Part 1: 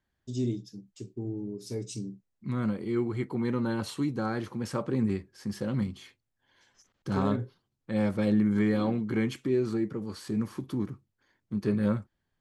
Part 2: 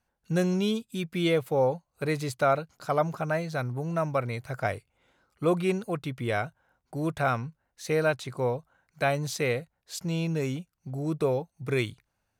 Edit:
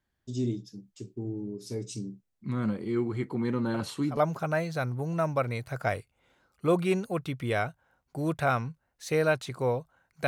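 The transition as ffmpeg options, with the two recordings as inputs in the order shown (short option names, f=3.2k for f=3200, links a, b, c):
-filter_complex "[1:a]asplit=2[a][b];[0:a]apad=whole_dur=10.27,atrim=end=10.27,atrim=end=4.172[c];[b]atrim=start=2.948:end=9.05[d];[a]atrim=start=2.52:end=2.95,asetpts=PTS-STARTPTS,volume=-13.5dB,afade=t=in:d=0.004:c=hsin,afade=t=out:st=0.426:d=0.004:c=hsin,adelay=3740[e];[c][d]acrossfade=d=0.004:c1=hsin:c2=hsin[f];[f][e]amix=inputs=2:normalize=0"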